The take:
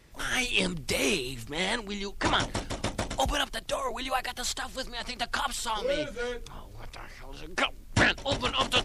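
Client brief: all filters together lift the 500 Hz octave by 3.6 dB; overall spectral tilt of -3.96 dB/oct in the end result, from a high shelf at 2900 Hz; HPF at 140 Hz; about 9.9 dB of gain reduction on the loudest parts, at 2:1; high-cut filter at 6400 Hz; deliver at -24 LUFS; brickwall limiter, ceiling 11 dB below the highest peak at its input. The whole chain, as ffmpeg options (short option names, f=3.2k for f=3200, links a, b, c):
-af "highpass=140,lowpass=6.4k,equalizer=f=500:t=o:g=4.5,highshelf=f=2.9k:g=-7.5,acompressor=threshold=-37dB:ratio=2,volume=17.5dB,alimiter=limit=-13dB:level=0:latency=1"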